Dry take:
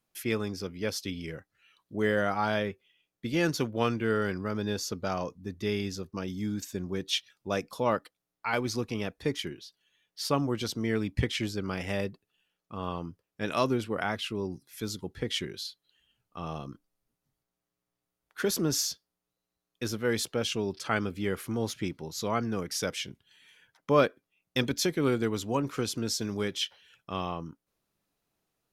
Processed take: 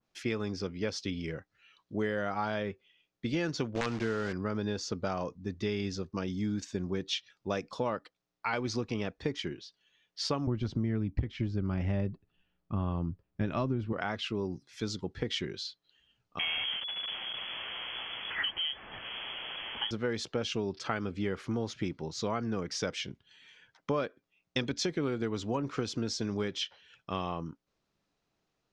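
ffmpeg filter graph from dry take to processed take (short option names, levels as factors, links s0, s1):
-filter_complex "[0:a]asettb=1/sr,asplit=3[s0][s1][s2];[s0]atrim=end=3.754[s3];[s1]atrim=start=3.75:end=4.33,asetpts=PTS-STARTPTS,afade=t=in:d=0.004:c=qsin,afade=t=out:st=0.576:d=0.004:c=qsin,acrusher=bits=7:dc=4:mix=0:aa=0.000001,aeval=exprs='(mod(5.31*val(0)+1,2)-1)/5.31':c=same[s4];[s2]atrim=start=4.326[s5];[s3][s4]acrossfade=d=0.004:c1=hsin:c2=qsin[s6];[s6][s5]acrossfade=d=0.004:c1=qsin:c2=hsin,asettb=1/sr,asplit=3[s7][s8][s9];[s7]atrim=end=10.474[s10];[s8]atrim=start=10.47:end=13.93,asetpts=PTS-STARTPTS,afade=t=in:d=0.004:c=qsin,afade=t=out:st=3.456:d=0.004:c=qsin,aemphasis=mode=reproduction:type=riaa,bandreject=f=470:w=6.6,aeval=exprs='clip(val(0),-1,0.266)':c=same[s11];[s9]atrim=start=13.926[s12];[s10][s11]acrossfade=d=0.004:c1=hsin:c2=qsin[s13];[s13][s12]acrossfade=d=0.004:c1=qsin:c2=hsin,asettb=1/sr,asplit=3[s14][s15][s16];[s14]atrim=end=16.394[s17];[s15]atrim=start=16.39:end=19.91,asetpts=PTS-STARTPTS,afade=t=in:d=0.004:c=qsin,afade=t=out:st=3.516:d=0.004:c=qsin,aeval=exprs='val(0)+0.5*0.0335*sgn(val(0))':c=same,lowpass=f=2900:t=q:w=0.5098,lowpass=f=2900:t=q:w=0.6013,lowpass=f=2900:t=q:w=0.9,lowpass=f=2900:t=q:w=2.563,afreqshift=-3400[s18];[s16]atrim=start=19.906[s19];[s17][s18]acrossfade=d=0.004:c1=hsin:c2=qsin[s20];[s20][s19]acrossfade=d=0.004:c1=qsin:c2=hsin,lowpass=f=6400:w=0.5412,lowpass=f=6400:w=1.3066,acompressor=threshold=0.0355:ratio=10,adynamicequalizer=threshold=0.00282:dfrequency=2000:dqfactor=0.7:tfrequency=2000:tqfactor=0.7:attack=5:release=100:ratio=0.375:range=1.5:mode=cutabove:tftype=highshelf,volume=1.19"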